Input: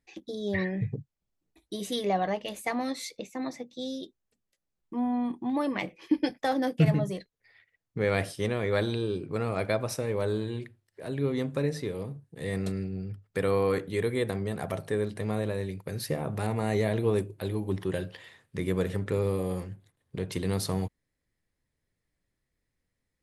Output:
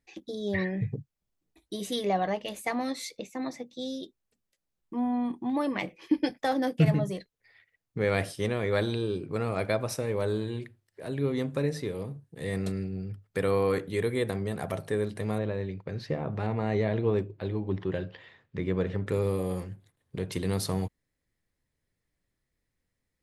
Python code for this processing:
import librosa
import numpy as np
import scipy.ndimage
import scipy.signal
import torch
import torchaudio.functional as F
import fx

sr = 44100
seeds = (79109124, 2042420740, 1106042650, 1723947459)

y = fx.air_absorb(x, sr, metres=180.0, at=(15.38, 19.07))